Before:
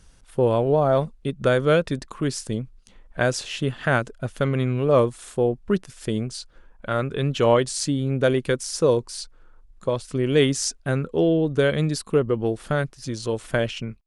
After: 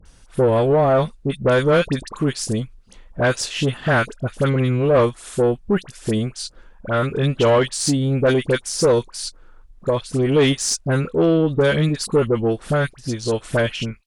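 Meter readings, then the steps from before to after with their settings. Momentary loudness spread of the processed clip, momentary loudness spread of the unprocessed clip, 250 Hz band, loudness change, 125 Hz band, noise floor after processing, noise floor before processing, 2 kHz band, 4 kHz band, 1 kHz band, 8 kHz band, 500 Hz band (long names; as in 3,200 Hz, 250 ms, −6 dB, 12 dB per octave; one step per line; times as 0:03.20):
9 LU, 11 LU, +4.0 dB, +3.5 dB, +4.0 dB, −48 dBFS, −52 dBFS, +4.0 dB, +4.5 dB, +3.5 dB, +5.0 dB, +3.5 dB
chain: all-pass dispersion highs, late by 57 ms, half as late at 1,400 Hz
tube saturation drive 14 dB, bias 0.2
level +5.5 dB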